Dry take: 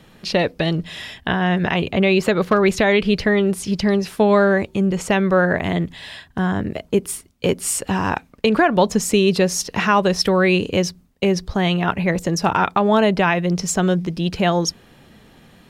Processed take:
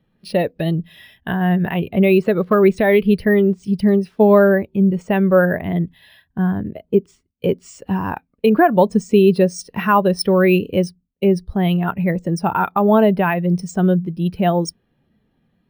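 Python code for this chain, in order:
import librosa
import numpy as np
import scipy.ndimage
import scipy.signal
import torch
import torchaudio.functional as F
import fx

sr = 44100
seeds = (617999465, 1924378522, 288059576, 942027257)

y = np.repeat(scipy.signal.resample_poly(x, 1, 3), 3)[:len(x)]
y = fx.spectral_expand(y, sr, expansion=1.5)
y = F.gain(torch.from_numpy(y), 2.0).numpy()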